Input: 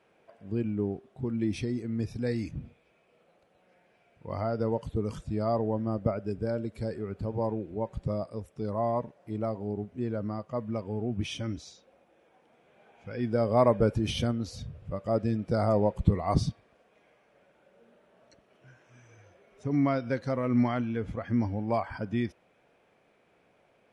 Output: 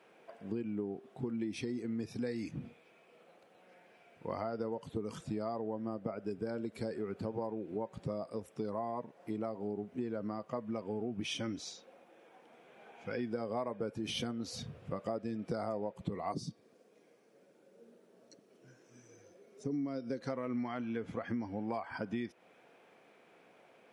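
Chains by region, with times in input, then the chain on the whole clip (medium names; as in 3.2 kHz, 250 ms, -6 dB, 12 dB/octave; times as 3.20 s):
16.32–20.21 s: high-pass 120 Hz + high-order bell 1.5 kHz -11.5 dB 2.7 oct
whole clip: high-pass 200 Hz 12 dB/octave; band-stop 590 Hz, Q 16; compression 8:1, threshold -38 dBFS; trim +4 dB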